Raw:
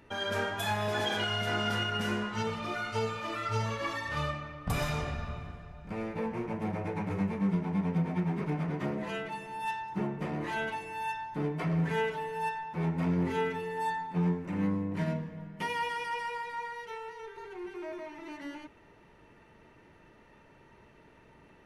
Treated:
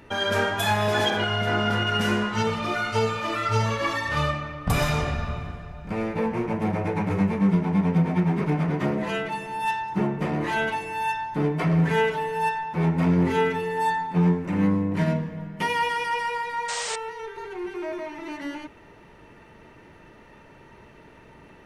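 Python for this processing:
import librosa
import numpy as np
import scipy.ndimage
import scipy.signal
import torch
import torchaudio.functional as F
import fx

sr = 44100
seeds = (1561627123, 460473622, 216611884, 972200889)

y = fx.high_shelf(x, sr, hz=3000.0, db=-10.0, at=(1.1, 1.87))
y = fx.spec_paint(y, sr, seeds[0], shape='noise', start_s=16.68, length_s=0.28, low_hz=450.0, high_hz=9000.0, level_db=-40.0)
y = y * 10.0 ** (8.5 / 20.0)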